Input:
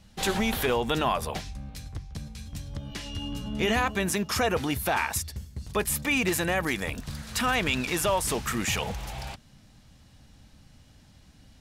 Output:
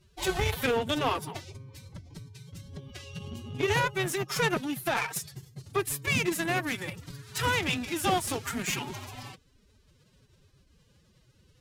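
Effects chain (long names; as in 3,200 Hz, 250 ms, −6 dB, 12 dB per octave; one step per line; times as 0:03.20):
phase-vocoder pitch shift with formants kept +11.5 semitones
harmonic generator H 7 −22 dB, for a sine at −13 dBFS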